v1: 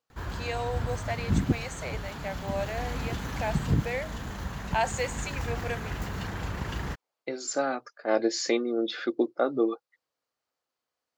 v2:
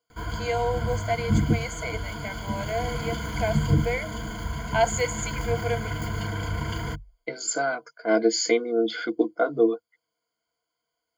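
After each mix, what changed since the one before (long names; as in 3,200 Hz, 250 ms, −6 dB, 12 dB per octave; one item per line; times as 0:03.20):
master: add EQ curve with evenly spaced ripples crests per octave 1.8, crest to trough 18 dB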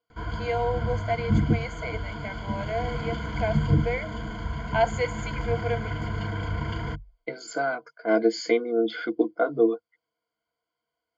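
master: add high-frequency loss of the air 170 metres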